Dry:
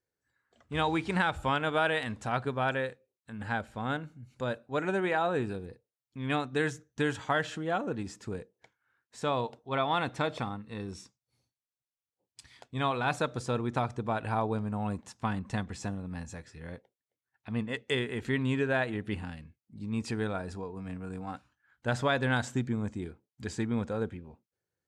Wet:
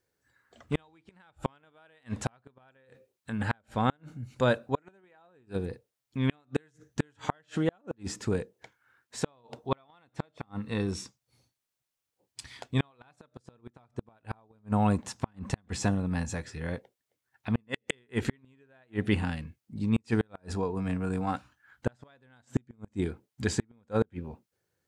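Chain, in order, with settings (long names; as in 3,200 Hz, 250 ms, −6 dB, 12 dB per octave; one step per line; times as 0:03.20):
gate with flip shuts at −22 dBFS, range −40 dB
level +8.5 dB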